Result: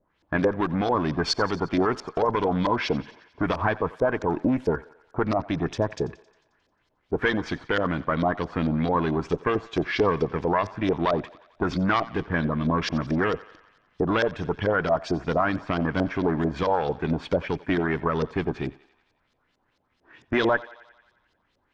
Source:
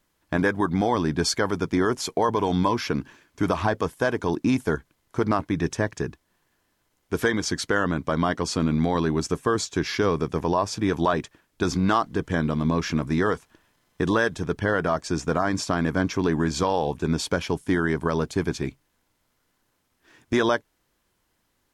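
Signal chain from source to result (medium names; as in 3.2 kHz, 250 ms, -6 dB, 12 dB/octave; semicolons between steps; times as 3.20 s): single-diode clipper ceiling -18.5 dBFS; LFO low-pass saw up 4.5 Hz 480–5200 Hz; thinning echo 89 ms, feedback 65%, high-pass 460 Hz, level -19 dB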